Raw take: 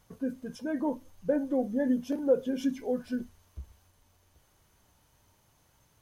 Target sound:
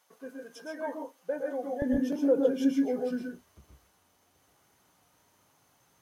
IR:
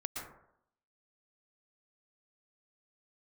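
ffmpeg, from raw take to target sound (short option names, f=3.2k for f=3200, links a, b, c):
-filter_complex "[0:a]asetnsamples=n=441:p=0,asendcmd='1.82 highpass f 160',highpass=580[a];[1:a]atrim=start_sample=2205,afade=t=out:st=0.21:d=0.01,atrim=end_sample=9702[b];[a][b]afir=irnorm=-1:irlink=0,volume=2dB"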